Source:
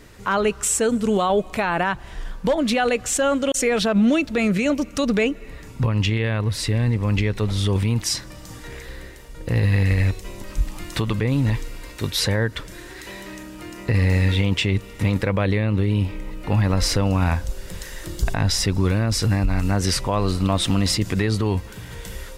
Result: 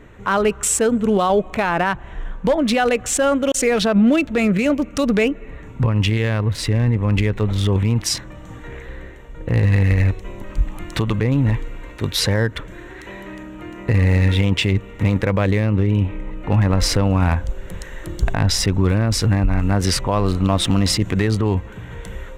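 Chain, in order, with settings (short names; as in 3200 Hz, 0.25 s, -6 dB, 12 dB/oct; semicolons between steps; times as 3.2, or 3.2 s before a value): Wiener smoothing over 9 samples; gain +3 dB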